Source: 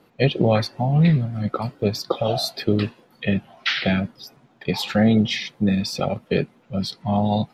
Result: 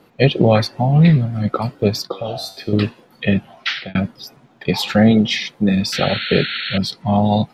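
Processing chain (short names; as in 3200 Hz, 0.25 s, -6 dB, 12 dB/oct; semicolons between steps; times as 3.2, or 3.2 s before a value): 2.07–2.73 resonator 96 Hz, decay 0.6 s, harmonics all, mix 70%; 3.53–3.95 fade out linear; 5.11–5.75 bell 90 Hz -7.5 dB 1.1 oct; 5.92–6.78 painted sound noise 1300–4400 Hz -30 dBFS; gain +5 dB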